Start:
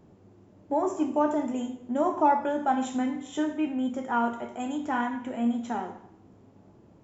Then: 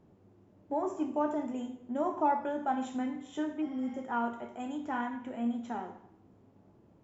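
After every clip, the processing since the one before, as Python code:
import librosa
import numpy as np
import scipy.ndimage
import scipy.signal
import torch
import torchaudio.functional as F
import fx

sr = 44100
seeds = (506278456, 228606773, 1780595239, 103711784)

y = fx.spec_repair(x, sr, seeds[0], start_s=3.64, length_s=0.32, low_hz=710.0, high_hz=5800.0, source='after')
y = fx.high_shelf(y, sr, hz=6800.0, db=-9.0)
y = F.gain(torch.from_numpy(y), -6.0).numpy()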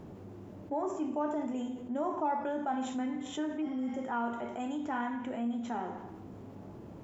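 y = fx.env_flatten(x, sr, amount_pct=50)
y = F.gain(torch.from_numpy(y), -4.5).numpy()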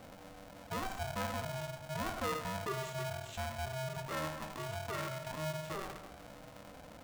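y = x * np.sign(np.sin(2.0 * np.pi * 390.0 * np.arange(len(x)) / sr))
y = F.gain(torch.from_numpy(y), -5.0).numpy()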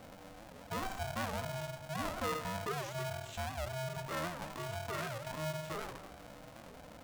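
y = fx.record_warp(x, sr, rpm=78.0, depth_cents=250.0)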